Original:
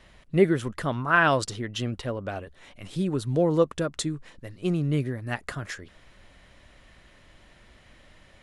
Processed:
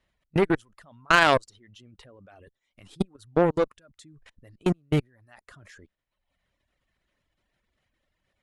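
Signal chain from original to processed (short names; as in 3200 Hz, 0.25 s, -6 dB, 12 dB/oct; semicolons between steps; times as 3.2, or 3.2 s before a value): level quantiser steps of 24 dB; reverb removal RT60 0.93 s; added harmonics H 2 -7 dB, 7 -21 dB, 8 -34 dB, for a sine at -13 dBFS; gain +7 dB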